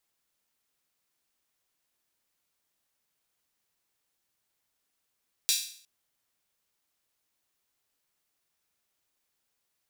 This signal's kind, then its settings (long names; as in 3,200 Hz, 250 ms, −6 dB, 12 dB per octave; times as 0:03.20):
open synth hi-hat length 0.36 s, high-pass 3,800 Hz, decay 0.53 s